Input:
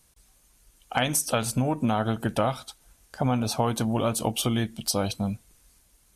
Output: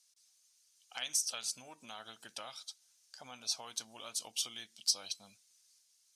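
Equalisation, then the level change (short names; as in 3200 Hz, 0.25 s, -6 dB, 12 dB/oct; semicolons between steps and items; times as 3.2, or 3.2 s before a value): band-pass 5400 Hz, Q 2.1; 0.0 dB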